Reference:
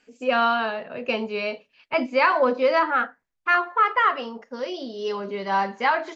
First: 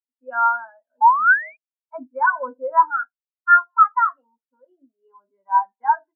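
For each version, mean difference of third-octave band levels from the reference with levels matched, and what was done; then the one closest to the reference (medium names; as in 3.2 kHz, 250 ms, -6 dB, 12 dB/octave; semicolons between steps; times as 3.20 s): 15.5 dB: painted sound rise, 1.01–1.57 s, 840–2500 Hz -20 dBFS; cabinet simulation 270–3300 Hz, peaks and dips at 280 Hz +9 dB, 420 Hz -8 dB, 930 Hz +8 dB, 1.5 kHz +9 dB, 2.5 kHz -8 dB; spectral contrast expander 2.5:1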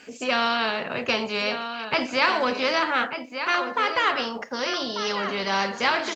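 9.0 dB: high-pass 57 Hz; delay 1192 ms -17 dB; spectrum-flattening compressor 2:1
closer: second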